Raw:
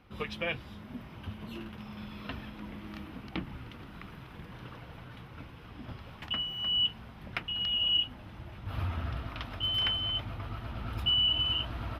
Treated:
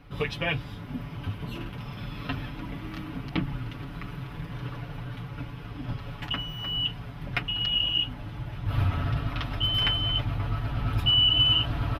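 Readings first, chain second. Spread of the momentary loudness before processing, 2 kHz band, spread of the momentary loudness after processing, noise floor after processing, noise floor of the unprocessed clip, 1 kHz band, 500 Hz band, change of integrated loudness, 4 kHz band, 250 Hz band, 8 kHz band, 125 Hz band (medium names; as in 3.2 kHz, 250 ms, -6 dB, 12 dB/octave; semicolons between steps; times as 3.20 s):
21 LU, +6.0 dB, 16 LU, -40 dBFS, -49 dBFS, +6.0 dB, +5.5 dB, +3.5 dB, +4.0 dB, +7.0 dB, no reading, +10.5 dB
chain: bass shelf 130 Hz +9.5 dB; comb 7 ms, depth 78%; trim +4 dB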